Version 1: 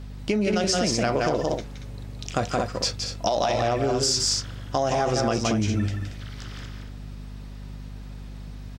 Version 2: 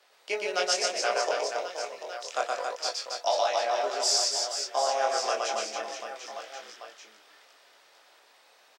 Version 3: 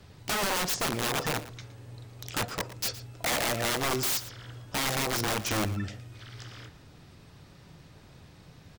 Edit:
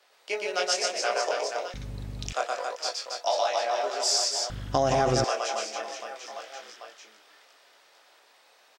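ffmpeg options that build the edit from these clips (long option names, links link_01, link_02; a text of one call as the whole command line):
ffmpeg -i take0.wav -i take1.wav -filter_complex "[0:a]asplit=2[link_01][link_02];[1:a]asplit=3[link_03][link_04][link_05];[link_03]atrim=end=1.742[link_06];[link_01]atrim=start=1.738:end=2.332[link_07];[link_04]atrim=start=2.328:end=4.502[link_08];[link_02]atrim=start=4.498:end=5.242[link_09];[link_05]atrim=start=5.238[link_10];[link_06][link_07]acrossfade=duration=0.004:curve1=hsin:curve2=hsin[link_11];[link_11][link_08]acrossfade=duration=0.004:curve1=hsin:curve2=hsin[link_12];[link_12][link_09]acrossfade=duration=0.004:curve1=hsin:curve2=hsin[link_13];[link_13][link_10]acrossfade=duration=0.004:curve1=hsin:curve2=hsin" out.wav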